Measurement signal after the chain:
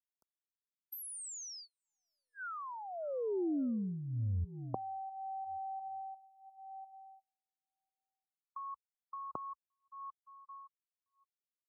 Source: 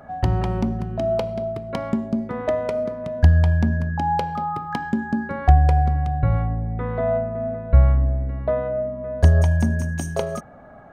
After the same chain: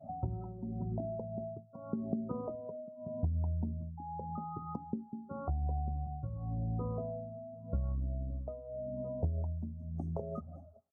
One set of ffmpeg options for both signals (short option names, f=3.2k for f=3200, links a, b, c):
-filter_complex "[0:a]aeval=exprs='(tanh(2*val(0)+0.35)-tanh(0.35))/2':c=same,highpass=f=62:w=0.5412,highpass=f=62:w=1.3066,aecho=1:1:569|1138|1707:0.0944|0.0378|0.0151,tremolo=f=0.87:d=0.89,acompressor=threshold=-33dB:ratio=6,aeval=exprs='0.133*(cos(1*acos(clip(val(0)/0.133,-1,1)))-cos(1*PI/2))+0.0237*(cos(3*acos(clip(val(0)/0.133,-1,1)))-cos(3*PI/2))':c=same,adynamicequalizer=threshold=0.00126:dfrequency=1400:dqfactor=1.7:tfrequency=1400:tqfactor=1.7:attack=5:release=100:ratio=0.375:range=2.5:mode=boostabove:tftype=bell,asuperstop=centerf=2600:order=20:qfactor=0.82,highshelf=f=2.5k:g=-12,acrossover=split=460|3000[a][b][c];[b]acompressor=threshold=-50dB:ratio=6[d];[a][d][c]amix=inputs=3:normalize=0,afftdn=nr=25:nf=-47,volume=6.5dB"